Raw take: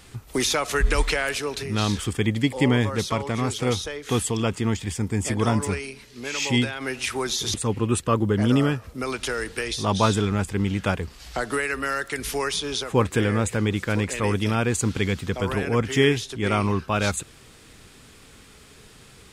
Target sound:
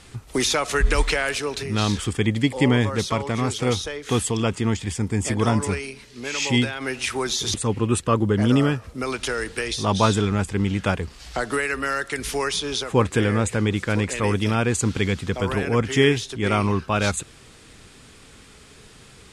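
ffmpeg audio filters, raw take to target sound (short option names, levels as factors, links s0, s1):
-af "lowpass=f=11000:w=0.5412,lowpass=f=11000:w=1.3066,volume=1.19"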